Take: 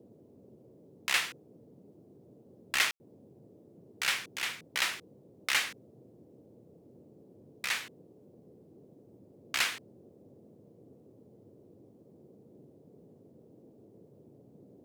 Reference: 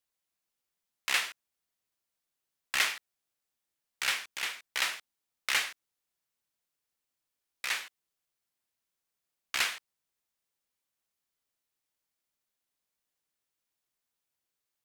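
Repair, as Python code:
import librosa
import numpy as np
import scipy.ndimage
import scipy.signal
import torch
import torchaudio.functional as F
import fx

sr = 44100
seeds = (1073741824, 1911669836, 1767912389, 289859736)

y = fx.fix_ambience(x, sr, seeds[0], print_start_s=11.61, print_end_s=12.11, start_s=2.91, end_s=3.0)
y = fx.noise_reduce(y, sr, print_start_s=11.61, print_end_s=12.11, reduce_db=28.0)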